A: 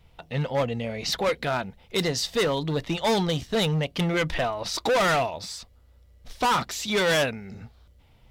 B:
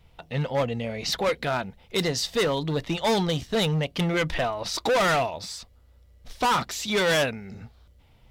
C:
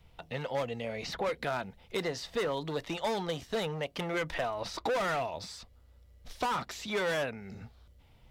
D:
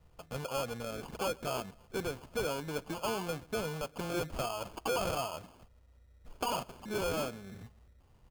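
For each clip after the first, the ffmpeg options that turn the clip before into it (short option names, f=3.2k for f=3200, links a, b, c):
-af anull
-filter_complex "[0:a]acrossover=split=360|2300|5000[a][b][c][d];[a]acompressor=threshold=-39dB:ratio=4[e];[b]acompressor=threshold=-27dB:ratio=4[f];[c]acompressor=threshold=-45dB:ratio=4[g];[d]acompressor=threshold=-48dB:ratio=4[h];[e][f][g][h]amix=inputs=4:normalize=0,volume=-3dB"
-filter_complex "[0:a]lowpass=f=3.2k:w=0.5412,lowpass=f=3.2k:w=1.3066,asplit=2[a][b];[b]adelay=127,lowpass=f=1.4k:p=1,volume=-23dB,asplit=2[c][d];[d]adelay=127,lowpass=f=1.4k:p=1,volume=0.43,asplit=2[e][f];[f]adelay=127,lowpass=f=1.4k:p=1,volume=0.43[g];[a][c][e][g]amix=inputs=4:normalize=0,acrusher=samples=23:mix=1:aa=0.000001,volume=-2.5dB"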